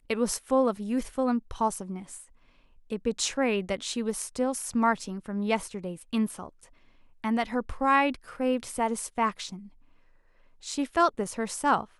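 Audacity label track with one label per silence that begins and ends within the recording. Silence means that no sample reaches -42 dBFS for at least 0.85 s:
9.670000	10.630000	silence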